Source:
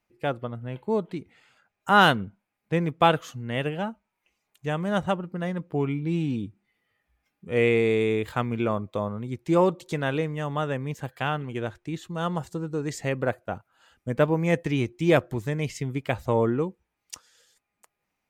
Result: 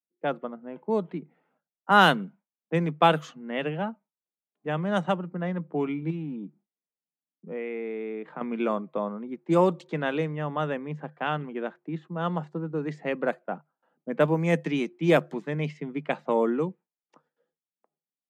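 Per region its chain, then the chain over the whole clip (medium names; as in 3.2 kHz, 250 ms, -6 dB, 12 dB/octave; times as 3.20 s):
6.10–8.41 s: compression 4:1, threshold -30 dBFS + dynamic bell 2.1 kHz, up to +3 dB, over -48 dBFS, Q 2.6
whole clip: gate with hold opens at -50 dBFS; level-controlled noise filter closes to 570 Hz, open at -18.5 dBFS; Chebyshev high-pass 150 Hz, order 8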